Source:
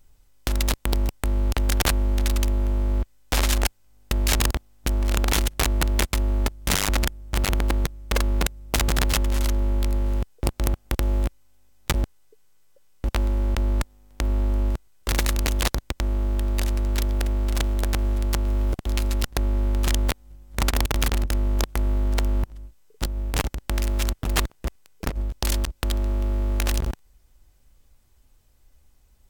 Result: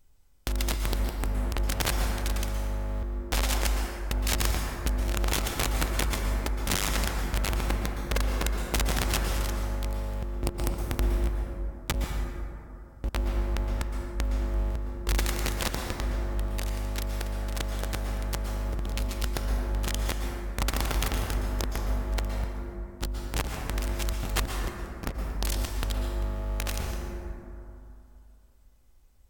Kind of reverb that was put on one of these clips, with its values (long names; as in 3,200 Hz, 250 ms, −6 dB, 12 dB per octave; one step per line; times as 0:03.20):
dense smooth reverb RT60 2.8 s, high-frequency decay 0.35×, pre-delay 105 ms, DRR 2 dB
level −5.5 dB